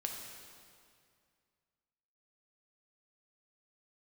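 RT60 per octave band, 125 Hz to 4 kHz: 2.6, 2.4, 2.2, 2.2, 2.1, 1.9 s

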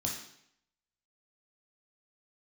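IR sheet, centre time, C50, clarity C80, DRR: 38 ms, 4.0 dB, 7.5 dB, -2.0 dB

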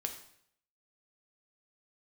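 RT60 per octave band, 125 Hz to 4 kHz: 0.75, 0.70, 0.65, 0.65, 0.65, 0.60 s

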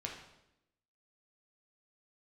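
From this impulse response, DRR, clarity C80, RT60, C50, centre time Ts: -1.0 dB, 7.5 dB, 0.85 s, 4.5 dB, 35 ms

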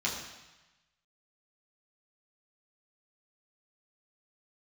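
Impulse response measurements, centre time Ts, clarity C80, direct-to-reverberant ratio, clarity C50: 47 ms, 6.0 dB, -5.5 dB, 4.5 dB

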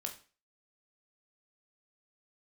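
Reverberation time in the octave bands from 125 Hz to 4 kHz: 0.35, 0.40, 0.40, 0.35, 0.40, 0.35 s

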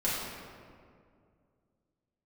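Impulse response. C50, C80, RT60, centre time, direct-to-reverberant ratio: -1.5 dB, 0.5 dB, 2.2 s, 0.115 s, -10.0 dB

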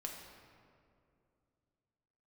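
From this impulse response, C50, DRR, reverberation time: 3.0 dB, 0.0 dB, 2.5 s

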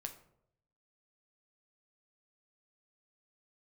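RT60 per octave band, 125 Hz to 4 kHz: 1.0, 0.75, 0.85, 0.65, 0.45, 0.40 s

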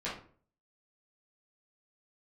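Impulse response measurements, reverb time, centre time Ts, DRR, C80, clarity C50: 0.45 s, 34 ms, -9.5 dB, 11.0 dB, 5.0 dB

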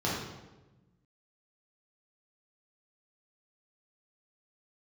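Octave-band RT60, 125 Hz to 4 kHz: 1.7, 1.6, 1.2, 1.0, 0.90, 0.80 s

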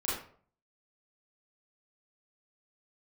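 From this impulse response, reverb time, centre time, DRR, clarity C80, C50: 0.50 s, 53 ms, -8.5 dB, 7.0 dB, 1.5 dB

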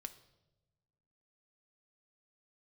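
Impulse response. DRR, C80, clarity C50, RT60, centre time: 8.0 dB, 17.0 dB, 14.5 dB, not exponential, 6 ms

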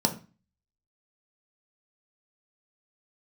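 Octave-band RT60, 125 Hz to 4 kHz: 0.45, 0.45, 0.30, 0.35, 0.35, 0.30 s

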